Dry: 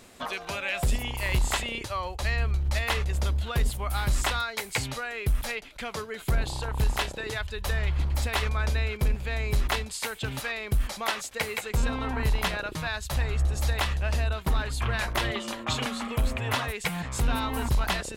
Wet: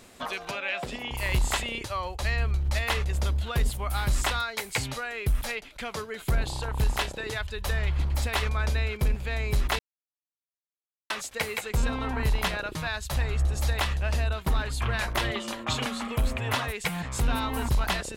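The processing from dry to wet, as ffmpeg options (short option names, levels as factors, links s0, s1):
-filter_complex "[0:a]asettb=1/sr,asplit=3[s0][s1][s2];[s0]atrim=end=0.514[s3];[s1]atrim=start=0.51:end=1.11,asetpts=PTS-STARTPTS,afade=t=in:d=0.004:c=qsin,afade=t=out:st=0.596:d=0.004:c=qsin,acrossover=split=180 5100:gain=0.0891 1 0.141[s4][s5][s6];[s4][s5][s6]amix=inputs=3:normalize=0[s7];[s2]atrim=start=1.106[s8];[s3][s7]acrossfade=d=0.004:c1=hsin:c2=qsin[s9];[s9][s8]acrossfade=d=0.004:c1=qsin:c2=hsin,asplit=3[s10][s11][s12];[s10]atrim=end=9.79,asetpts=PTS-STARTPTS,afade=t=out:st=9.786:d=0.004:c=hsin[s13];[s11]atrim=start=9.79:end=11.1,asetpts=PTS-STARTPTS,volume=0[s14];[s12]atrim=start=11.1,asetpts=PTS-STARTPTS,afade=t=in:d=0.004:c=hsin[s15];[s13][s14][s15]concat=n=3:v=0:a=1"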